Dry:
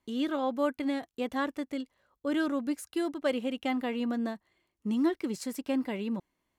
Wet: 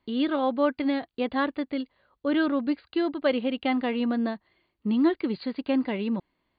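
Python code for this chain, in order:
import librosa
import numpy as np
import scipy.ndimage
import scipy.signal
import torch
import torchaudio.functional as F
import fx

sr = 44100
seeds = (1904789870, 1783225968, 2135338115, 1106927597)

y = fx.brickwall_lowpass(x, sr, high_hz=4800.0)
y = F.gain(torch.from_numpy(y), 5.0).numpy()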